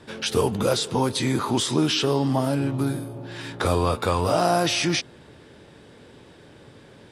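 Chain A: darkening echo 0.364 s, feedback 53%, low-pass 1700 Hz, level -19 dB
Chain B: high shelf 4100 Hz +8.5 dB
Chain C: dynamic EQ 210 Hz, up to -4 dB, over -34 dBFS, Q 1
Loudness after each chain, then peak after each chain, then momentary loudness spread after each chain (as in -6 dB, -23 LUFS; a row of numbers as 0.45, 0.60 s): -23.0, -21.5, -24.5 LUFS; -6.5, -5.5, -7.5 dBFS; 11, 9, 8 LU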